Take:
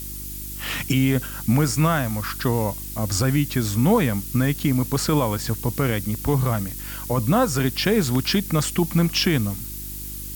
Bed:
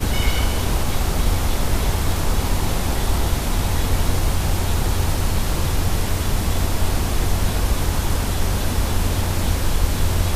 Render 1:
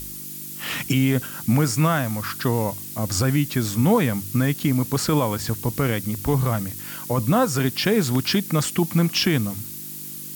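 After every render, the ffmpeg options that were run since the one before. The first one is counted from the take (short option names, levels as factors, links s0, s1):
-af "bandreject=f=50:t=h:w=4,bandreject=f=100:t=h:w=4"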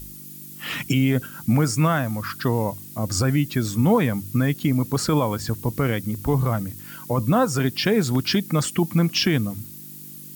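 -af "afftdn=nr=8:nf=-35"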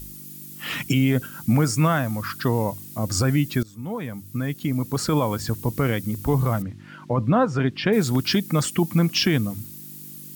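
-filter_complex "[0:a]asettb=1/sr,asplit=3[s0][s1][s2];[s0]atrim=end=6.624[s3];[s1]atrim=start=6.62:end=7.93,asetpts=PTS-STARTPTS,afade=t=in:d=0.004:c=qsin,afade=t=out:st=1.306:d=0.004:c=qsin,lowpass=2900[s4];[s2]atrim=start=7.926[s5];[s3][s4]acrossfade=d=0.004:c1=hsin:c2=qsin[s6];[s6][s5]acrossfade=d=0.004:c1=qsin:c2=hsin,asplit=2[s7][s8];[s7]atrim=end=3.63,asetpts=PTS-STARTPTS,afade=t=out:st=3.626:d=0.004:c=hsin:silence=0.0794328[s9];[s8]atrim=start=3.63,asetpts=PTS-STARTPTS,afade=t=in:d=1.72:silence=0.0794328[s10];[s9][s10]concat=n=2:v=0:a=1"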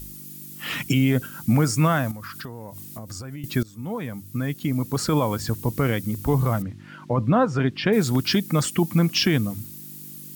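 -filter_complex "[0:a]asettb=1/sr,asplit=3[s0][s1][s2];[s0]atrim=end=2.114[s3];[s1]atrim=start=2.11:end=3.44,asetpts=PTS-STARTPTS,afade=t=in:d=0.004:c=qsin,afade=t=out:st=1.326:d=0.004:c=qsin,acompressor=threshold=0.0251:ratio=8:attack=3.2:release=140:knee=1:detection=peak[s4];[s2]atrim=start=3.436[s5];[s3][s4]acrossfade=d=0.004:c1=hsin:c2=qsin[s6];[s6][s5]acrossfade=d=0.004:c1=qsin:c2=hsin"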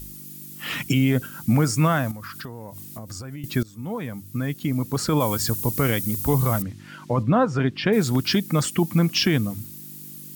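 -filter_complex "[0:a]asettb=1/sr,asplit=3[s0][s1][s2];[s0]atrim=end=5.204[s3];[s1]atrim=start=5.2:end=7.23,asetpts=PTS-STARTPTS,afade=t=in:d=0.004:c=qsin,afade=t=out:st=2.026:d=0.004:c=qsin,highshelf=f=4200:g=11[s4];[s2]atrim=start=7.226[s5];[s3][s4]acrossfade=d=0.004:c1=hsin:c2=qsin[s6];[s6][s5]acrossfade=d=0.004:c1=qsin:c2=hsin"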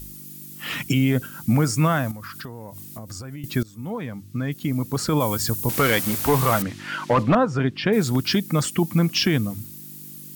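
-filter_complex "[0:a]asettb=1/sr,asplit=3[s0][s1][s2];[s0]atrim=end=3.904[s3];[s1]atrim=start=3.9:end=4.52,asetpts=PTS-STARTPTS,afade=t=in:d=0.004:c=qsin,afade=t=out:st=0.616:d=0.004:c=qsin,acrossover=split=6500[s4][s5];[s5]acompressor=threshold=0.00158:ratio=4:attack=1:release=60[s6];[s4][s6]amix=inputs=2:normalize=0[s7];[s2]atrim=start=4.516[s8];[s3][s7]acrossfade=d=0.004:c1=hsin:c2=qsin[s9];[s9][s8]acrossfade=d=0.004:c1=qsin:c2=hsin,asettb=1/sr,asplit=3[s10][s11][s12];[s10]atrim=end=5.694[s13];[s11]atrim=start=5.69:end=7.35,asetpts=PTS-STARTPTS,afade=t=in:d=0.004:c=qsin,afade=t=out:st=1.656:d=0.004:c=qsin,asplit=2[s14][s15];[s15]highpass=f=720:p=1,volume=10,asoftclip=type=tanh:threshold=0.398[s16];[s14][s16]amix=inputs=2:normalize=0,lowpass=f=3900:p=1,volume=0.501[s17];[s12]atrim=start=7.346[s18];[s13][s17]acrossfade=d=0.004:c1=hsin:c2=qsin[s19];[s19][s18]acrossfade=d=0.004:c1=qsin:c2=hsin"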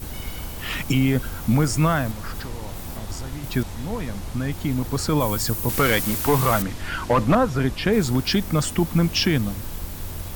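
-filter_complex "[1:a]volume=0.2[s0];[0:a][s0]amix=inputs=2:normalize=0"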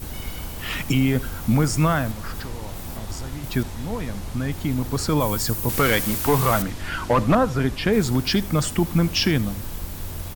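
-af "aecho=1:1:80:0.0944"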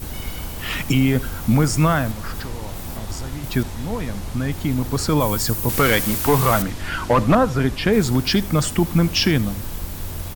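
-af "volume=1.33"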